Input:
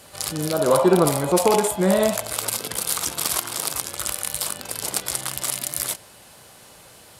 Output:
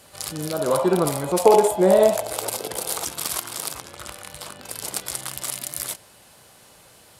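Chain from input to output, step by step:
0:01.45–0:03.05: flat-topped bell 540 Hz +8.5 dB
0:03.75–0:04.63: low-pass filter 2,700 Hz 6 dB per octave
level −3.5 dB

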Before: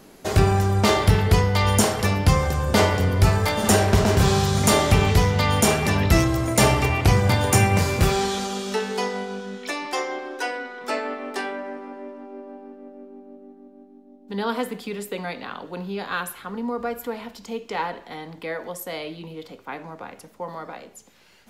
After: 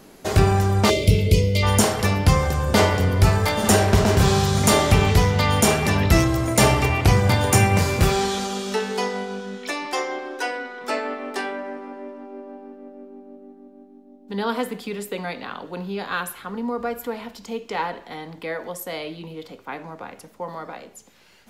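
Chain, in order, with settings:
gain on a spectral selection 0:00.90–0:01.63, 650–2,000 Hz −24 dB
level +1 dB

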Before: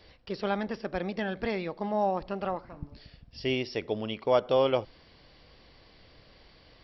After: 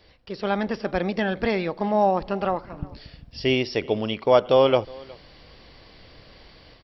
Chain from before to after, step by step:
automatic gain control gain up to 7.5 dB
single-tap delay 365 ms −23.5 dB

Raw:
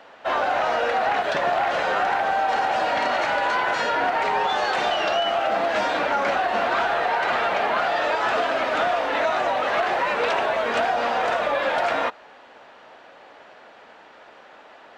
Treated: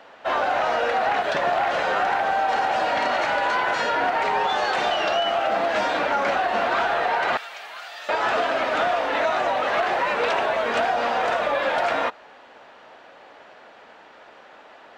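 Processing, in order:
0:07.37–0:08.09: first difference

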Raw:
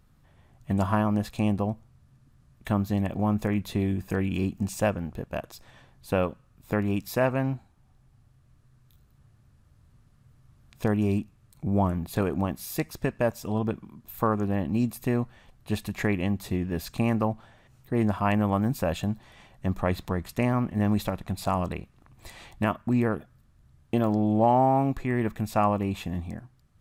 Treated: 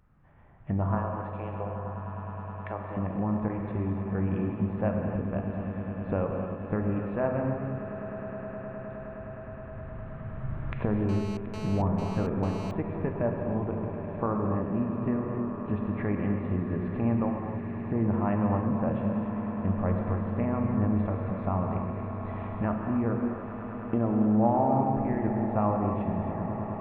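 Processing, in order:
camcorder AGC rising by 8.6 dB per second
0:00.95–0:02.97: high-pass filter 400 Hz 24 dB per octave
0:03.48–0:04.15: output level in coarse steps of 13 dB
Gaussian smoothing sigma 4.8 samples
echo that builds up and dies away 104 ms, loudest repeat 8, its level −17 dB
reverb whose tail is shaped and stops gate 320 ms flat, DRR 2 dB
0:11.09–0:12.71: phone interference −38 dBFS
one half of a high-frequency compander encoder only
level −4.5 dB

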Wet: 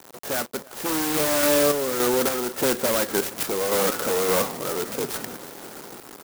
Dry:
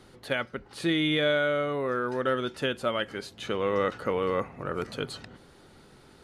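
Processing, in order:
in parallel at −3.5 dB: sine wavefolder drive 15 dB, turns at −13.5 dBFS
on the sum: sample-and-hold tremolo 3.5 Hz
bit reduction 6 bits
band-pass filter 250–4,300 Hz
on a send: single-tap delay 326 ms −23 dB
on the sum: converter with an unsteady clock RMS 0.11 ms

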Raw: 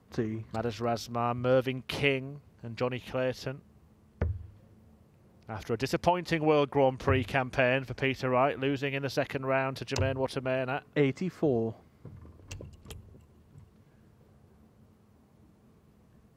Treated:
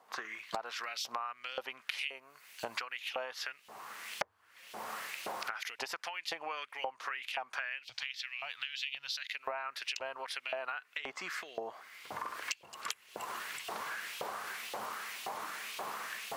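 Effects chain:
camcorder AGC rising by 34 dB per second
0:07.85–0:09.33: drawn EQ curve 130 Hz 0 dB, 340 Hz −27 dB, 520 Hz −24 dB, 1,100 Hz −17 dB, 3,700 Hz +9 dB, 10,000 Hz −2 dB
auto-filter high-pass saw up 1.9 Hz 720–3,100 Hz
0:01.97–0:02.99: high-shelf EQ 4,900 Hz → 8,400 Hz +9.5 dB
downward compressor 5 to 1, threshold −39 dBFS, peak gain reduction 24.5 dB
level +2 dB

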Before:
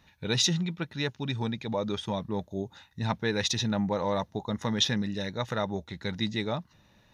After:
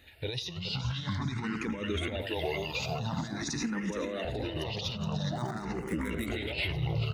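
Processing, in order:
0:05.35–0:06.27: running median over 9 samples
delay with pitch and tempo change per echo 115 ms, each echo −5 semitones, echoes 2
0:02.21–0:02.99: spectral tilt +3 dB per octave
0:03.62–0:04.25: Butterworth high-pass 180 Hz 96 dB per octave
far-end echo of a speakerphone 90 ms, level −13 dB
compressor whose output falls as the input rises −31 dBFS, ratio −0.5
high-shelf EQ 4,500 Hz +6 dB
repeating echo 421 ms, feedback 52%, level −11 dB
brickwall limiter −23 dBFS, peak gain reduction 7 dB
frequency shifter mixed with the dry sound +0.47 Hz
level +2.5 dB

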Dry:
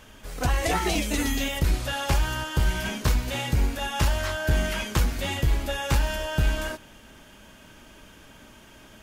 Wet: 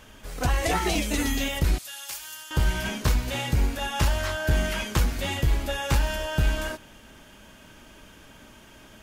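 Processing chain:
0:01.78–0:02.51: first difference

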